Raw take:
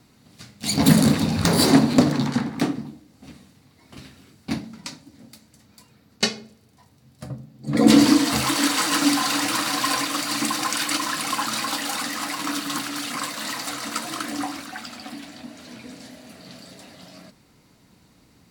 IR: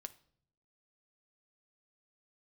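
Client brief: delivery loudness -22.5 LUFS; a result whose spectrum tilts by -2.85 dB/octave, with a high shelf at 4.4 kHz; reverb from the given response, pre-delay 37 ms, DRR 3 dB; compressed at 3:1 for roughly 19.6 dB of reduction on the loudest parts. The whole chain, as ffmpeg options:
-filter_complex "[0:a]highshelf=f=4400:g=8.5,acompressor=threshold=0.0141:ratio=3,asplit=2[s0][s1];[1:a]atrim=start_sample=2205,adelay=37[s2];[s1][s2]afir=irnorm=-1:irlink=0,volume=1.26[s3];[s0][s3]amix=inputs=2:normalize=0,volume=3.55"

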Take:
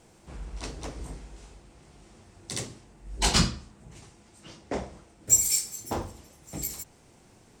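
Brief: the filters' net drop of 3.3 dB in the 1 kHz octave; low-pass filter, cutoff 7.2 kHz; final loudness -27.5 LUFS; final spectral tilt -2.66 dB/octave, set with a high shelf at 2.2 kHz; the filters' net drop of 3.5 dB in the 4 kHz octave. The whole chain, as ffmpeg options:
-af "lowpass=7200,equalizer=f=1000:t=o:g=-4.5,highshelf=f=2200:g=3,equalizer=f=4000:t=o:g=-7,volume=1.33"

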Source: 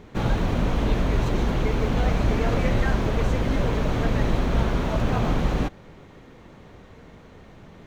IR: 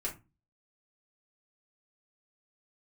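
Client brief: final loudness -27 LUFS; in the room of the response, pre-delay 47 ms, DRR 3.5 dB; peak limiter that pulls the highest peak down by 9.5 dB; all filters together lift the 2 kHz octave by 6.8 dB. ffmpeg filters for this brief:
-filter_complex "[0:a]equalizer=f=2000:t=o:g=8.5,alimiter=limit=0.133:level=0:latency=1,asplit=2[s0][s1];[1:a]atrim=start_sample=2205,adelay=47[s2];[s1][s2]afir=irnorm=-1:irlink=0,volume=0.501[s3];[s0][s3]amix=inputs=2:normalize=0,volume=0.841"

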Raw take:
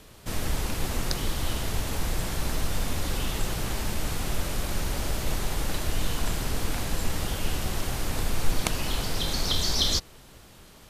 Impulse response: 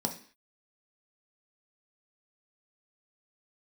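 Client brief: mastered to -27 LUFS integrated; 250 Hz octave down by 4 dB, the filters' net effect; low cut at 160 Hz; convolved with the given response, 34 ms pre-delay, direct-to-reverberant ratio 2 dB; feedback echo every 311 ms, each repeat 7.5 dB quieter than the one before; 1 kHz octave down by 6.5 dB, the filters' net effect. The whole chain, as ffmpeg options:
-filter_complex "[0:a]highpass=160,equalizer=f=250:t=o:g=-3.5,equalizer=f=1000:t=o:g=-8.5,aecho=1:1:311|622|933|1244|1555:0.422|0.177|0.0744|0.0312|0.0131,asplit=2[s0][s1];[1:a]atrim=start_sample=2205,adelay=34[s2];[s1][s2]afir=irnorm=-1:irlink=0,volume=0.473[s3];[s0][s3]amix=inputs=2:normalize=0,volume=1.26"

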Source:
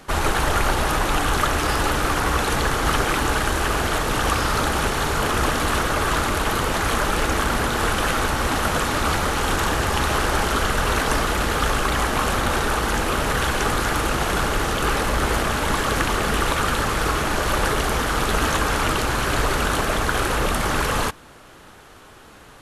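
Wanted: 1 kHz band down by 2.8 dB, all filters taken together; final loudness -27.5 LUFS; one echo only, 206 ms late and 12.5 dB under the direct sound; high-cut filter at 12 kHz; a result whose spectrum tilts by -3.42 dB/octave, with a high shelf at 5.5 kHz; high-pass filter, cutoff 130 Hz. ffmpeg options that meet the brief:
-af "highpass=130,lowpass=12000,equalizer=f=1000:t=o:g=-3.5,highshelf=f=5500:g=-4,aecho=1:1:206:0.237,volume=0.631"

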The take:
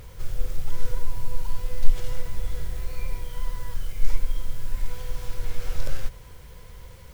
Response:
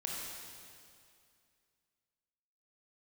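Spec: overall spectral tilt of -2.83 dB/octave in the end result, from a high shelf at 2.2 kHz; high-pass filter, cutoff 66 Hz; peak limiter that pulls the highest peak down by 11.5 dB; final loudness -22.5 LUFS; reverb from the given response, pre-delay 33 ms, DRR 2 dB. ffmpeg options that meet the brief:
-filter_complex "[0:a]highpass=66,highshelf=f=2200:g=7,alimiter=level_in=1.68:limit=0.0631:level=0:latency=1,volume=0.596,asplit=2[s0][s1];[1:a]atrim=start_sample=2205,adelay=33[s2];[s1][s2]afir=irnorm=-1:irlink=0,volume=0.631[s3];[s0][s3]amix=inputs=2:normalize=0,volume=5.31"

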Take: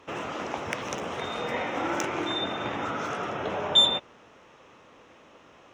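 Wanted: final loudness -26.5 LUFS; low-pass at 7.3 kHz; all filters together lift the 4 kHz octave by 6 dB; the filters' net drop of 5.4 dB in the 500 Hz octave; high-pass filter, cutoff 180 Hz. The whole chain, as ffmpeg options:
-af "highpass=180,lowpass=7300,equalizer=f=500:t=o:g=-7,equalizer=f=4000:t=o:g=7,volume=0.631"

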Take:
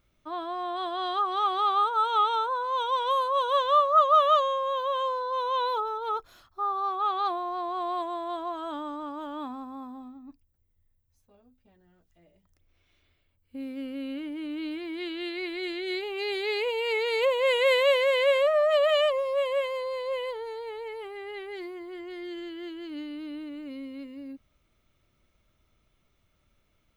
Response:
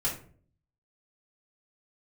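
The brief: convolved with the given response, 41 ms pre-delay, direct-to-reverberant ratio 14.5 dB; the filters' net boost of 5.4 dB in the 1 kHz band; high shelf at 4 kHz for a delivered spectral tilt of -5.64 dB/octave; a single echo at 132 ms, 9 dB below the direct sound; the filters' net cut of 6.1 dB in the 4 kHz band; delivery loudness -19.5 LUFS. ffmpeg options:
-filter_complex "[0:a]equalizer=f=1000:t=o:g=7.5,highshelf=f=4000:g=-8,equalizer=f=4000:t=o:g=-5,aecho=1:1:132:0.355,asplit=2[s0][s1];[1:a]atrim=start_sample=2205,adelay=41[s2];[s1][s2]afir=irnorm=-1:irlink=0,volume=0.0944[s3];[s0][s3]amix=inputs=2:normalize=0,volume=1.41"

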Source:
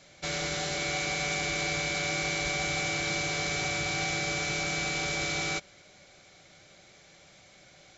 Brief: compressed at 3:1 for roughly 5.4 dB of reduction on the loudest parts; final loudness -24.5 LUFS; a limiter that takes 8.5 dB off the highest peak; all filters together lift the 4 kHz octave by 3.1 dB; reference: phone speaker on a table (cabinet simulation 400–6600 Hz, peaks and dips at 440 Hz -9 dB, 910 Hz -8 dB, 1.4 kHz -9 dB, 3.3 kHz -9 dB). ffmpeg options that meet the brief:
-af "equalizer=f=4000:t=o:g=7.5,acompressor=threshold=0.0251:ratio=3,alimiter=level_in=1.78:limit=0.0631:level=0:latency=1,volume=0.562,highpass=f=400:w=0.5412,highpass=f=400:w=1.3066,equalizer=f=440:t=q:w=4:g=-9,equalizer=f=910:t=q:w=4:g=-8,equalizer=f=1400:t=q:w=4:g=-9,equalizer=f=3300:t=q:w=4:g=-9,lowpass=f=6600:w=0.5412,lowpass=f=6600:w=1.3066,volume=5.01"

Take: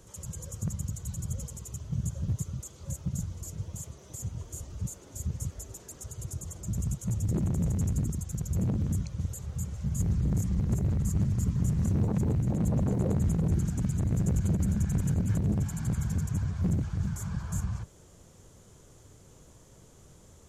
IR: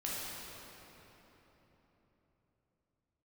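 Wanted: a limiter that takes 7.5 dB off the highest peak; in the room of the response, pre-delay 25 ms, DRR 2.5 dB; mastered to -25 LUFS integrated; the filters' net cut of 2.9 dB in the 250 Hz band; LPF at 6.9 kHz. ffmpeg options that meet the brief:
-filter_complex "[0:a]lowpass=6900,equalizer=f=250:t=o:g=-5,alimiter=limit=0.0668:level=0:latency=1,asplit=2[s0][s1];[1:a]atrim=start_sample=2205,adelay=25[s2];[s1][s2]afir=irnorm=-1:irlink=0,volume=0.501[s3];[s0][s3]amix=inputs=2:normalize=0,volume=2"

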